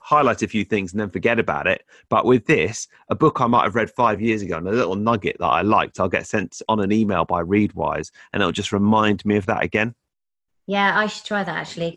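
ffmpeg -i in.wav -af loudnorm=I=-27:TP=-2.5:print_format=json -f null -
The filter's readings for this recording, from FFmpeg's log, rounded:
"input_i" : "-20.6",
"input_tp" : "-4.5",
"input_lra" : "2.6",
"input_thresh" : "-30.8",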